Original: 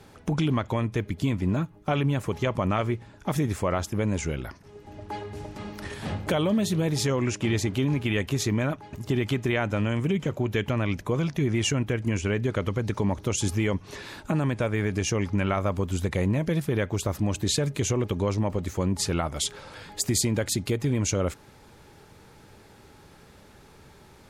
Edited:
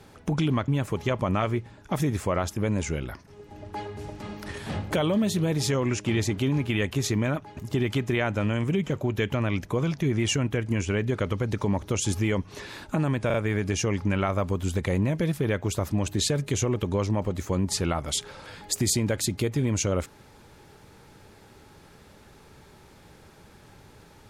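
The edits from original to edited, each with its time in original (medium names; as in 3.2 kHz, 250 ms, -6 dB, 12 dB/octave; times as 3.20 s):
0.68–2.04 s: delete
14.62 s: stutter 0.04 s, 3 plays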